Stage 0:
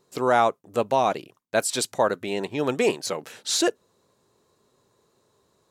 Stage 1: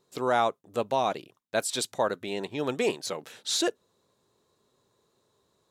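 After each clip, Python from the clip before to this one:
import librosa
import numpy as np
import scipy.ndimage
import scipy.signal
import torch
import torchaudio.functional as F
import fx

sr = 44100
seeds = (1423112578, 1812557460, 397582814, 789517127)

y = fx.peak_eq(x, sr, hz=3600.0, db=5.0, octaves=0.32)
y = y * librosa.db_to_amplitude(-5.0)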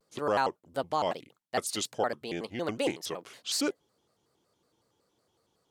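y = fx.vibrato_shape(x, sr, shape='square', rate_hz=5.4, depth_cents=250.0)
y = y * librosa.db_to_amplitude(-3.0)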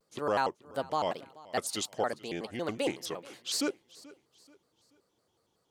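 y = fx.echo_feedback(x, sr, ms=432, feedback_pct=38, wet_db=-21.0)
y = y * librosa.db_to_amplitude(-1.5)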